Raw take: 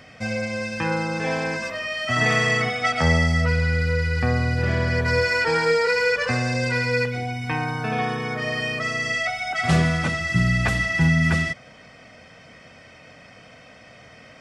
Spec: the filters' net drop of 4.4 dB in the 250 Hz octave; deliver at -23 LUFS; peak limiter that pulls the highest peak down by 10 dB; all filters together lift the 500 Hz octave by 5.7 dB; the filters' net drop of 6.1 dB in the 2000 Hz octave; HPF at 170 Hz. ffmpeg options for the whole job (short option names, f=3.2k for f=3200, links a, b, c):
-af "highpass=170,equalizer=f=250:t=o:g=-5,equalizer=f=500:t=o:g=7.5,equalizer=f=2k:t=o:g=-7.5,volume=3dB,alimiter=limit=-14.5dB:level=0:latency=1"